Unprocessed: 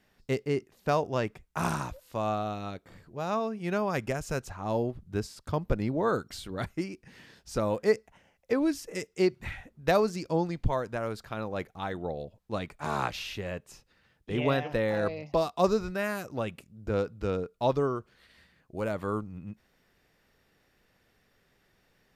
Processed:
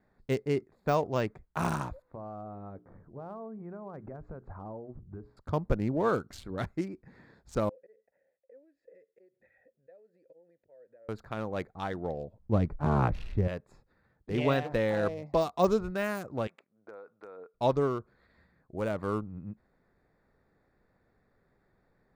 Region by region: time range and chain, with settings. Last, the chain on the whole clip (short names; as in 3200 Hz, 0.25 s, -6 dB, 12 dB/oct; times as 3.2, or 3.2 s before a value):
2.02–5.37 LPF 1300 Hz + compressor 12:1, threshold -37 dBFS + notches 60/120/180/240/300/360/420 Hz
7.69–11.09 auto swell 0.194 s + compressor 20:1, threshold -43 dBFS + vowel filter e
12.39–13.48 block floating point 7-bit + tilt -4 dB/oct
16.47–17.54 BPF 680–2800 Hz + compressor 12:1, threshold -41 dBFS
whole clip: Wiener smoothing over 15 samples; notch 5000 Hz, Q 28; de-esser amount 90%